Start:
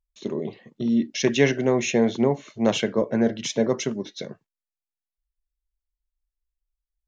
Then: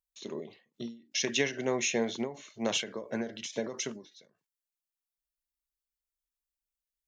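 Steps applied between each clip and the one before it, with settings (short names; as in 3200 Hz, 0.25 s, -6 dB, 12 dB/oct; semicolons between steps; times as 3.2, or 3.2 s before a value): tilt +2.5 dB/oct; ending taper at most 140 dB/s; gain -6 dB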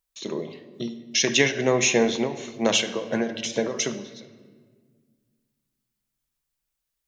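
shoebox room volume 2000 m³, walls mixed, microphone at 0.65 m; gain +9 dB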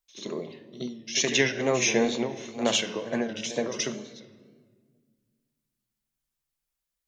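pre-echo 74 ms -12.5 dB; wow and flutter 83 cents; gain -3.5 dB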